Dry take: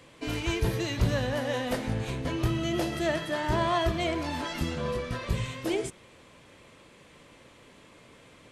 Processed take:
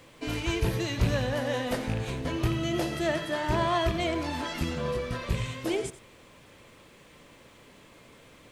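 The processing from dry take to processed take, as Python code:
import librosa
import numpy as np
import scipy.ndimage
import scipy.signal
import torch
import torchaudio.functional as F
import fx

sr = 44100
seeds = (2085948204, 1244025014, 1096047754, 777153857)

y = fx.rattle_buzz(x, sr, strikes_db=-24.0, level_db=-27.0)
y = y + 10.0 ** (-15.0 / 20.0) * np.pad(y, (int(89 * sr / 1000.0), 0))[:len(y)]
y = fx.dmg_noise_colour(y, sr, seeds[0], colour='pink', level_db=-65.0)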